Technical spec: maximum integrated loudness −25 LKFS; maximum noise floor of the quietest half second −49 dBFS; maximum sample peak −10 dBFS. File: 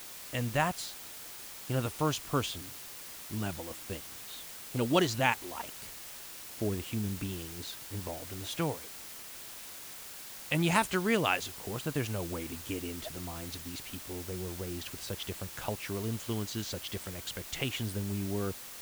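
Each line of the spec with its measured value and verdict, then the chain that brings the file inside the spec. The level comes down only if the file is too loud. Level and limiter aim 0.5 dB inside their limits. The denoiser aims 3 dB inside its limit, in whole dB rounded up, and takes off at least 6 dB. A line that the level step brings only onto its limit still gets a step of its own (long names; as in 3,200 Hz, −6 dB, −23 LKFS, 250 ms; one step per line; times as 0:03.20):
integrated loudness −35.0 LKFS: in spec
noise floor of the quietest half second −46 dBFS: out of spec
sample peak −10.5 dBFS: in spec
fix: broadband denoise 6 dB, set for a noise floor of −46 dBFS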